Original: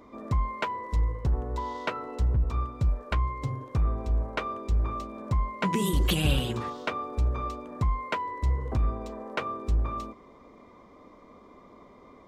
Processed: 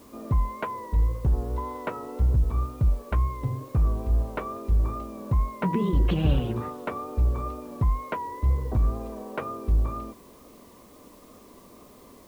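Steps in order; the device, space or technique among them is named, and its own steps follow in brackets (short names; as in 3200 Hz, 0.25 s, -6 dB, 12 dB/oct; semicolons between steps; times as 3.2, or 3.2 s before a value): cassette deck with a dirty head (tape spacing loss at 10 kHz 44 dB; wow and flutter; white noise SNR 33 dB); gain +3.5 dB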